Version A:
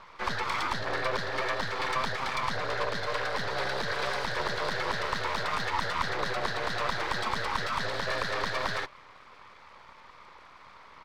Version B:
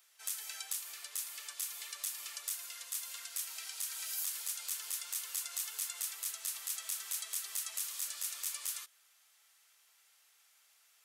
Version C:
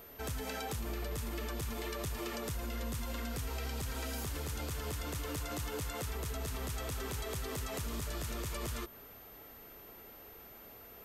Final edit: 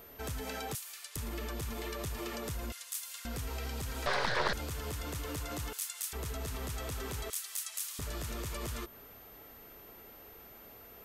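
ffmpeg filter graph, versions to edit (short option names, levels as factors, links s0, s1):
-filter_complex "[1:a]asplit=4[s0][s1][s2][s3];[2:a]asplit=6[s4][s5][s6][s7][s8][s9];[s4]atrim=end=0.752[s10];[s0]atrim=start=0.748:end=1.162[s11];[s5]atrim=start=1.158:end=2.722[s12];[s1]atrim=start=2.718:end=3.252[s13];[s6]atrim=start=3.248:end=4.062[s14];[0:a]atrim=start=4.058:end=4.532[s15];[s7]atrim=start=4.528:end=5.732[s16];[s2]atrim=start=5.728:end=6.132[s17];[s8]atrim=start=6.128:end=7.302[s18];[s3]atrim=start=7.298:end=7.992[s19];[s9]atrim=start=7.988[s20];[s10][s11]acrossfade=d=0.004:c1=hsin:c2=hsin[s21];[s21][s12]acrossfade=d=0.004:c1=hsin:c2=hsin[s22];[s22][s13]acrossfade=d=0.004:c1=hsin:c2=hsin[s23];[s23][s14]acrossfade=d=0.004:c1=hsin:c2=hsin[s24];[s24][s15]acrossfade=d=0.004:c1=hsin:c2=hsin[s25];[s25][s16]acrossfade=d=0.004:c1=hsin:c2=hsin[s26];[s26][s17]acrossfade=d=0.004:c1=hsin:c2=hsin[s27];[s27][s18]acrossfade=d=0.004:c1=hsin:c2=hsin[s28];[s28][s19]acrossfade=d=0.004:c1=hsin:c2=hsin[s29];[s29][s20]acrossfade=d=0.004:c1=hsin:c2=hsin"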